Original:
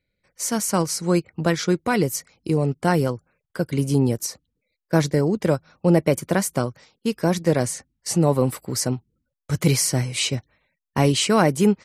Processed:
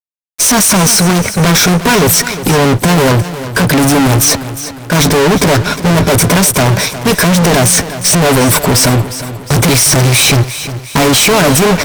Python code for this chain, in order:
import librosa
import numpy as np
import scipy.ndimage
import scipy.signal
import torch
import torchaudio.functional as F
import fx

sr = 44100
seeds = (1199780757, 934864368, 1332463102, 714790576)

y = fx.ripple_eq(x, sr, per_octave=1.6, db=8)
y = fx.transient(y, sr, attack_db=-2, sustain_db=5)
y = fx.fuzz(y, sr, gain_db=44.0, gate_db=-52.0)
y = fx.vibrato(y, sr, rate_hz=0.31, depth_cents=33.0)
y = fx.echo_feedback(y, sr, ms=357, feedback_pct=46, wet_db=-13)
y = y * 10.0 ** (5.5 / 20.0)